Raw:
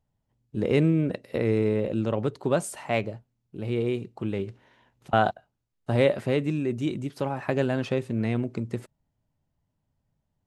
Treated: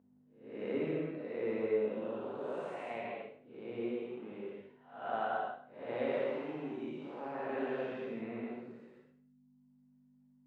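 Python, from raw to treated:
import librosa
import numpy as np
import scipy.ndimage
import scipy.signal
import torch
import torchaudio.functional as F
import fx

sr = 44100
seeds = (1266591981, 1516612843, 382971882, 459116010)

y = fx.spec_blur(x, sr, span_ms=291.0)
y = fx.dereverb_blind(y, sr, rt60_s=0.91)
y = fx.add_hum(y, sr, base_hz=50, snr_db=11)
y = fx.overload_stage(y, sr, gain_db=29.5, at=(6.12, 6.68))
y = fx.bandpass_edges(y, sr, low_hz=390.0, high_hz=2300.0)
y = fx.rev_gated(y, sr, seeds[0], gate_ms=280, shape='flat', drr_db=-4.5)
y = y * 10.0 ** (-7.0 / 20.0)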